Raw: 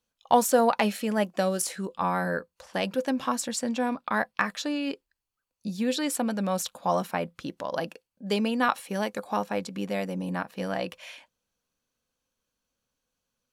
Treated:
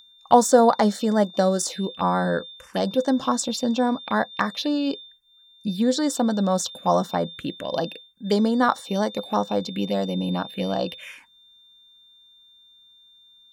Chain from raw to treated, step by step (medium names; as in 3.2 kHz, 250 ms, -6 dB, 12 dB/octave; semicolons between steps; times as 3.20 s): whistle 3.6 kHz -44 dBFS; touch-sensitive phaser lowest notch 460 Hz, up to 2.6 kHz, full sweep at -24.5 dBFS; trim +6.5 dB